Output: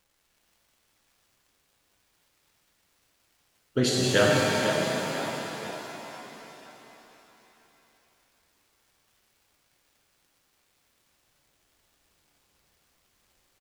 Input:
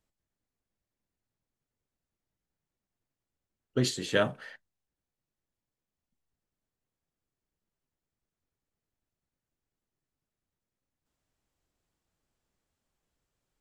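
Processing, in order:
echo with shifted repeats 494 ms, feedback 44%, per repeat +31 Hz, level −9 dB
surface crackle 400 per second −60 dBFS
reverb with rising layers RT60 3.6 s, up +7 semitones, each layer −8 dB, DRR −3 dB
level +2.5 dB

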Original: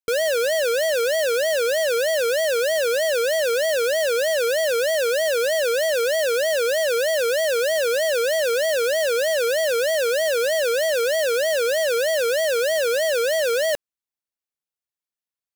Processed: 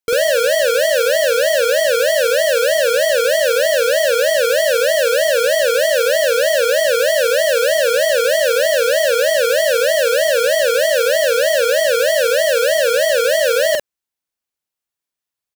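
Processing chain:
double-tracking delay 46 ms −2.5 dB
level +4.5 dB

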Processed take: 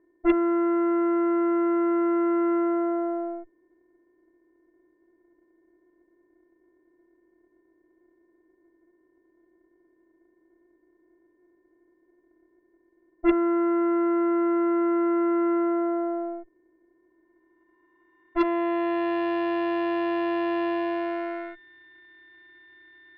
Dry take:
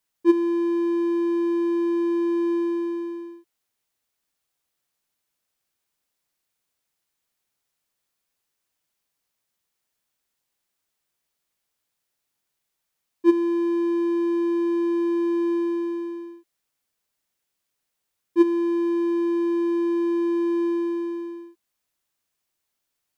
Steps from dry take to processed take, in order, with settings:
compressor on every frequency bin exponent 0.4
steady tone 1,800 Hz −42 dBFS
low-pass filter sweep 600 Hz → 1,900 Hz, 0:16.89–0:19.31
harmonic generator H 3 −17 dB, 6 −27 dB, 7 −28 dB, 8 −17 dB, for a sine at −4 dBFS
level −6.5 dB

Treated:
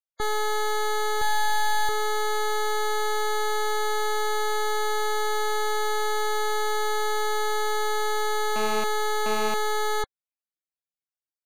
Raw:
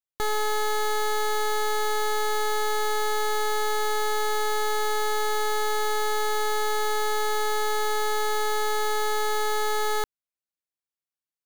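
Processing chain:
spectral peaks only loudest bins 64
0:01.21–0:01.89: comb filter 3.6 ms, depth 83%
0:08.56–0:09.54: phone interference −31 dBFS

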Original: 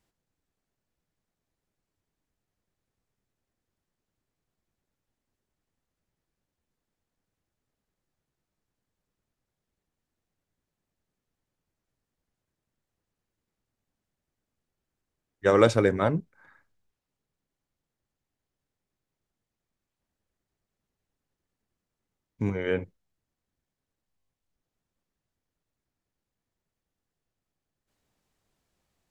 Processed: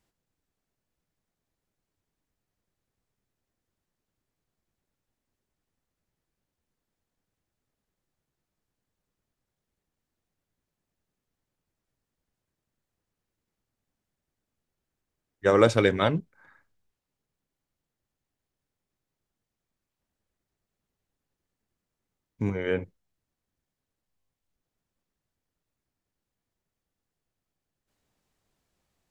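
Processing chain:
0:15.77–0:16.19: parametric band 3,200 Hz +14 dB 0.97 octaves

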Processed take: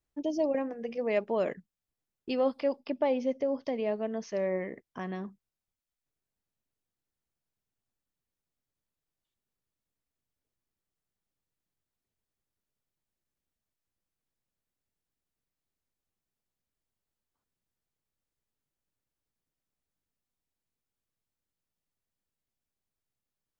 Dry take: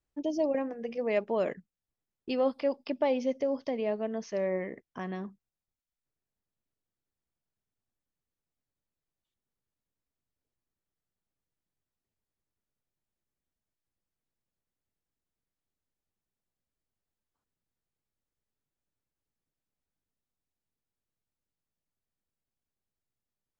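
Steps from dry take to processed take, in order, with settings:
0:02.80–0:03.65: high-shelf EQ 3,500 Hz −7 dB

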